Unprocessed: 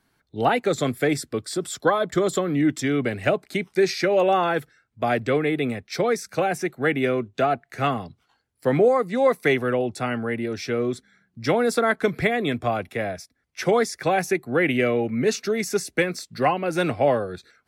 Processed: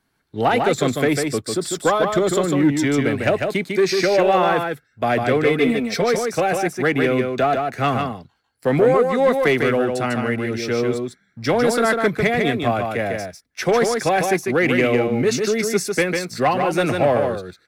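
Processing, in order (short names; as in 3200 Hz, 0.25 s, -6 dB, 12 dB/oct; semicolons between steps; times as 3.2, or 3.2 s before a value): 5.44–6.04 comb 4.4 ms, depth 83%; sample leveller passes 1; echo 0.149 s -4.5 dB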